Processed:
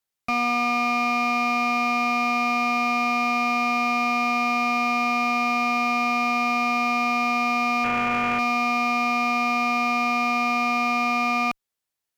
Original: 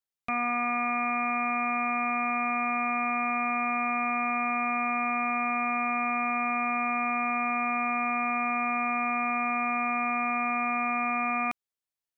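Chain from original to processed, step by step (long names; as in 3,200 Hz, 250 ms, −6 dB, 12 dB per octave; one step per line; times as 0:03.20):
0:07.84–0:08.39: variable-slope delta modulation 16 kbit/s
asymmetric clip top −26.5 dBFS, bottom −23 dBFS
level +7 dB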